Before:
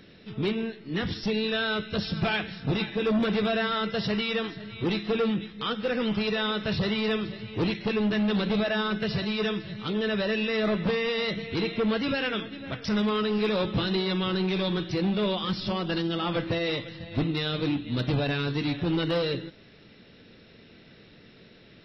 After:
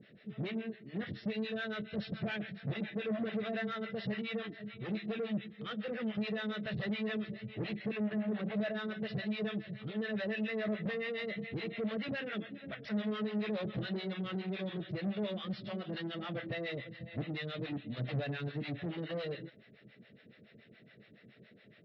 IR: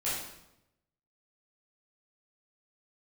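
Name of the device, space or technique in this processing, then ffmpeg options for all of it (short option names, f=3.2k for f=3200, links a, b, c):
guitar amplifier with harmonic tremolo: -filter_complex "[0:a]asplit=3[a][b][c];[a]afade=t=out:st=7.97:d=0.02[d];[b]lowpass=2.5k,afade=t=in:st=7.97:d=0.02,afade=t=out:st=8.55:d=0.02[e];[c]afade=t=in:st=8.55:d=0.02[f];[d][e][f]amix=inputs=3:normalize=0,acrossover=split=570[g][h];[g]aeval=exprs='val(0)*(1-1/2+1/2*cos(2*PI*7.1*n/s))':c=same[i];[h]aeval=exprs='val(0)*(1-1/2-1/2*cos(2*PI*7.1*n/s))':c=same[j];[i][j]amix=inputs=2:normalize=0,asoftclip=type=tanh:threshold=-29.5dB,highpass=96,equalizer=f=130:t=q:w=4:g=8,equalizer=f=210:t=q:w=4:g=6,equalizer=f=430:t=q:w=4:g=3,equalizer=f=620:t=q:w=4:g=7,equalizer=f=950:t=q:w=4:g=-8,equalizer=f=1.9k:t=q:w=4:g=8,lowpass=f=3.9k:w=0.5412,lowpass=f=3.9k:w=1.3066,volume=-6dB"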